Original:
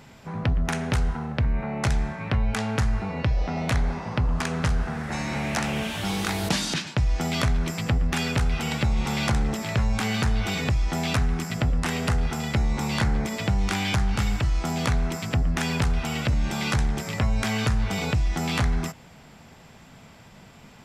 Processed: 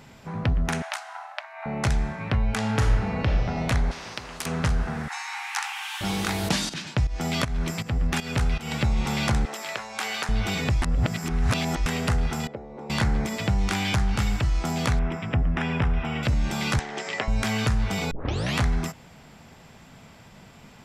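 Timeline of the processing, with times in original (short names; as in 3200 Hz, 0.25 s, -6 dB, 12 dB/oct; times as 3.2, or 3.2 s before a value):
0.82–1.66 brick-wall FIR high-pass 590 Hz
2.58–3.34 reverb throw, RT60 1.3 s, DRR 2 dB
3.91–4.46 spectral compressor 4:1
5.08–6.01 brick-wall FIR high-pass 740 Hz
6.69–8.79 pump 159 bpm, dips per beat 1, -14 dB, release 0.289 s
9.45–10.29 HPF 570 Hz
10.82–11.86 reverse
12.47–12.9 band-pass 490 Hz, Q 2.4
14.99–16.23 polynomial smoothing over 25 samples
16.79–17.28 speaker cabinet 370–7400 Hz, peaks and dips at 410 Hz +5 dB, 720 Hz +4 dB, 1900 Hz +6 dB, 3000 Hz +4 dB
18.11 tape start 0.46 s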